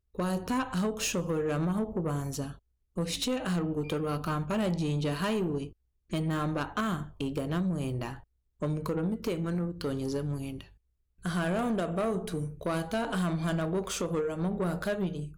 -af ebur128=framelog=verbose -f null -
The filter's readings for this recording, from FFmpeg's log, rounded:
Integrated loudness:
  I:         -31.8 LUFS
  Threshold: -42.0 LUFS
Loudness range:
  LRA:         2.2 LU
  Threshold: -52.3 LUFS
  LRA low:   -33.5 LUFS
  LRA high:  -31.3 LUFS